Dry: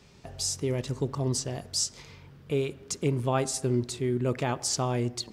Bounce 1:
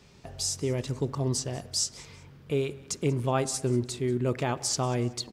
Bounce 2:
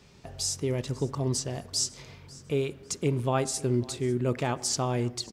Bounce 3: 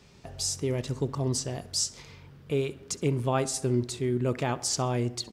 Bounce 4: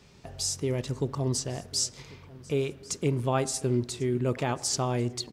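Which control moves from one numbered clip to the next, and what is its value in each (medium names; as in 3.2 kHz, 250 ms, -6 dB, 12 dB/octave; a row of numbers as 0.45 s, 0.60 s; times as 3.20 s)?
feedback delay, time: 187 ms, 547 ms, 65 ms, 1094 ms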